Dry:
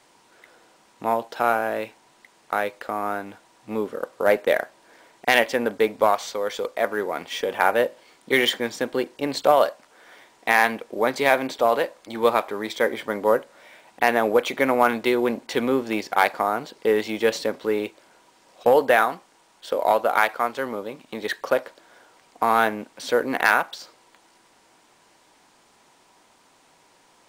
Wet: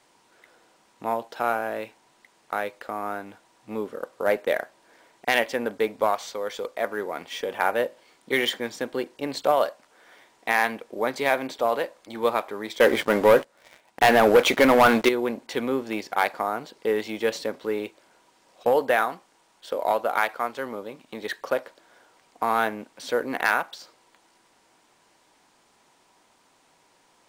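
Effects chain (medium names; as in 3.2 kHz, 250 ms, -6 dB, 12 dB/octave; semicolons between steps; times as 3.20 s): 12.80–15.09 s: waveshaping leveller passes 3; trim -4 dB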